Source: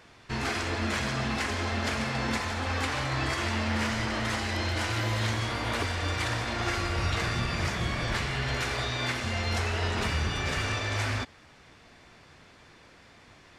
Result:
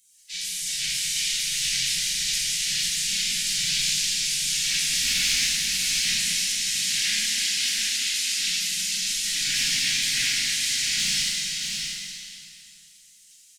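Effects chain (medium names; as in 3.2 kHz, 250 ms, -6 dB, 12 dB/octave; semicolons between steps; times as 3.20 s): spectral gate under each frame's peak -25 dB weak; elliptic band-stop 220–1900 Hz, stop band 40 dB; in parallel at +2 dB: peak limiter -35 dBFS, peak gain reduction 6.5 dB; on the sum: overload inside the chain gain 30 dB; on a send: delay 636 ms -5.5 dB; on the sum: plate-style reverb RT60 2.5 s, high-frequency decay 0.95×, DRR -7.5 dB; trim +5.5 dB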